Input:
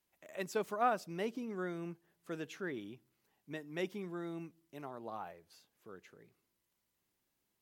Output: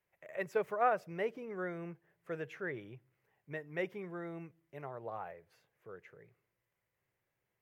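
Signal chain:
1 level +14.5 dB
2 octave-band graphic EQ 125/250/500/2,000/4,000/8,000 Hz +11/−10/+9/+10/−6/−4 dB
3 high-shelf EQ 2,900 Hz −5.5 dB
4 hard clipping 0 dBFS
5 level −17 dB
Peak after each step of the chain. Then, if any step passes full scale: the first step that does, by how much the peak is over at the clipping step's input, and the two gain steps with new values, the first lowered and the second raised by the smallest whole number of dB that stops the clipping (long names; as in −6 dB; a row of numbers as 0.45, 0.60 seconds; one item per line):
−5.5, −1.5, −2.0, −2.0, −19.0 dBFS
no step passes full scale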